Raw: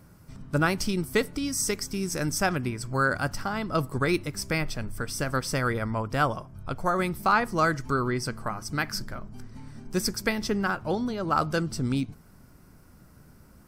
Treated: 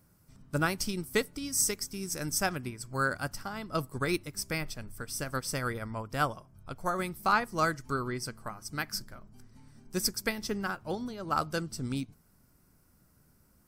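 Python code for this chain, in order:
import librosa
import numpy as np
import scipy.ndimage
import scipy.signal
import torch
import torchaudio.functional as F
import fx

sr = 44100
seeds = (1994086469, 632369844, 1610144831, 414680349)

y = fx.high_shelf(x, sr, hz=5700.0, db=9.5)
y = fx.upward_expand(y, sr, threshold_db=-36.0, expansion=1.5)
y = y * 10.0 ** (-3.5 / 20.0)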